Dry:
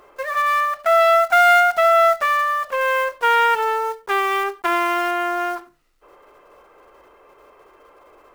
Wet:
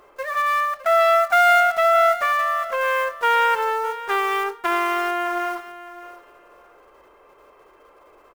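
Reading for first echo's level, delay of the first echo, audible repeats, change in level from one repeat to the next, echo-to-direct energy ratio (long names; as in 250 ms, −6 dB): −15.0 dB, 611 ms, 2, −15.0 dB, −15.0 dB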